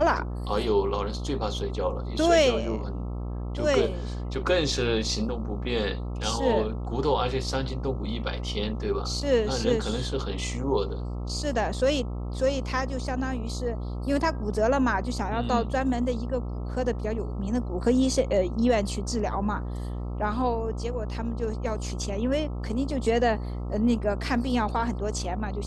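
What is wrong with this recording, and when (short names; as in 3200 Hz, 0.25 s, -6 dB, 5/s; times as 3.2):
buzz 60 Hz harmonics 22 -32 dBFS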